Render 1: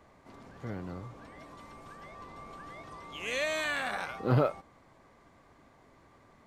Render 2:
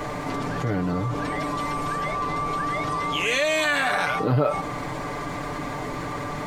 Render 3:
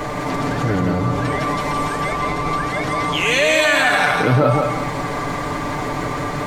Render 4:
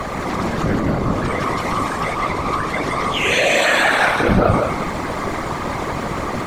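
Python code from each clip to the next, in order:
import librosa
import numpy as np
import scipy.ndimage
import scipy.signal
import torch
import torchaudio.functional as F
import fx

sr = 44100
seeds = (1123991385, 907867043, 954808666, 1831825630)

y1 = x + 0.65 * np.pad(x, (int(6.8 * sr / 1000.0), 0))[:len(x)]
y1 = fx.env_flatten(y1, sr, amount_pct=70)
y2 = fx.echo_feedback(y1, sr, ms=169, feedback_pct=31, wet_db=-3.5)
y2 = y2 * librosa.db_to_amplitude(5.5)
y3 = fx.whisperise(y2, sr, seeds[0])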